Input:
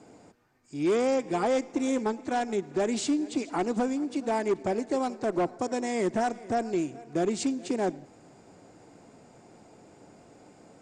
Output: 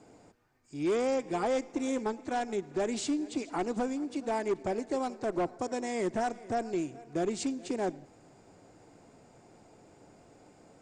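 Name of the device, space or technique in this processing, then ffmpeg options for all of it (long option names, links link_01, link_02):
low shelf boost with a cut just above: -af "lowshelf=frequency=72:gain=7,equalizer=frequency=210:width_type=o:width=0.9:gain=-2.5,volume=-3.5dB"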